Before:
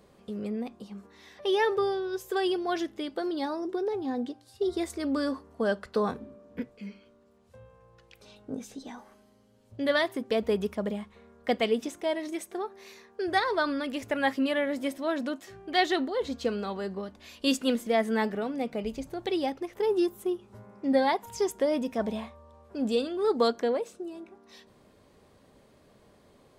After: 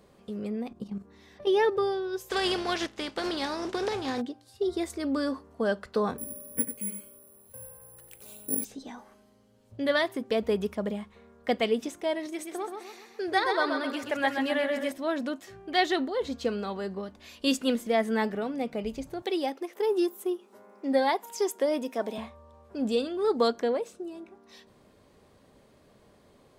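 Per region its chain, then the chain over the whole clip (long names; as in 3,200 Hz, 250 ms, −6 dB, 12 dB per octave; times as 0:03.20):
0:00.71–0:01.78: low-shelf EQ 380 Hz +11.5 dB + output level in coarse steps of 11 dB
0:02.28–0:04.20: compressing power law on the bin magnitudes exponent 0.56 + low-pass filter 6,100 Hz
0:06.18–0:08.65: parametric band 12,000 Hz −12.5 dB 1.3 octaves + single-tap delay 92 ms −9.5 dB + bad sample-rate conversion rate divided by 4×, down none, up zero stuff
0:12.26–0:14.92: low-shelf EQ 140 Hz −12 dB + repeating echo 129 ms, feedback 46%, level −5.5 dB
0:19.22–0:22.18: high-pass filter 260 Hz 24 dB per octave + high-shelf EQ 11,000 Hz +8 dB
whole clip: no processing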